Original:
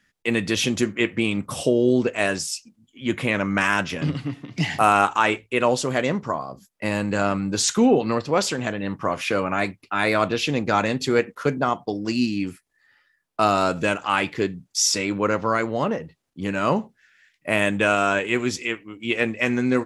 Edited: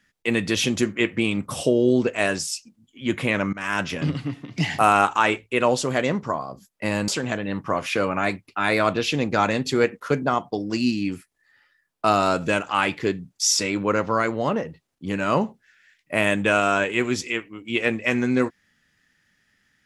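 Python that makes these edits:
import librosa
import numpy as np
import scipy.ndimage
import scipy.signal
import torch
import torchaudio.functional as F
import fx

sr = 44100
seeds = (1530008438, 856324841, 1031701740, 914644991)

y = fx.edit(x, sr, fx.fade_in_from(start_s=3.53, length_s=0.32, floor_db=-24.0),
    fx.cut(start_s=7.08, length_s=1.35), tone=tone)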